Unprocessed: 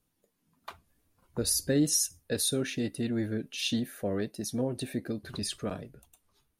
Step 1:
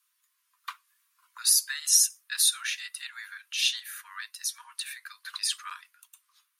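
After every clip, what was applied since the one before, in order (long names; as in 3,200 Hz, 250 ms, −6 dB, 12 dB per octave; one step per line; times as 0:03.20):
Butterworth high-pass 1,000 Hz 96 dB per octave
level +7 dB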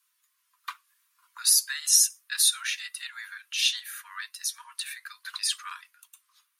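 flanger 0.38 Hz, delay 2 ms, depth 2.4 ms, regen −58%
level +5.5 dB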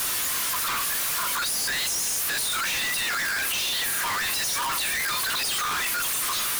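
sign of each sample alone
level +4 dB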